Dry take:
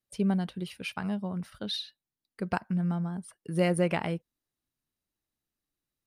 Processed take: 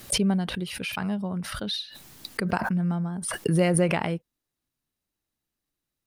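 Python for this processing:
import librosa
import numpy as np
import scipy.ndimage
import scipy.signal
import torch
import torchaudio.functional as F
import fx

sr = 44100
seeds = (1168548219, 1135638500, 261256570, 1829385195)

y = fx.pre_swell(x, sr, db_per_s=37.0)
y = y * librosa.db_to_amplitude(3.0)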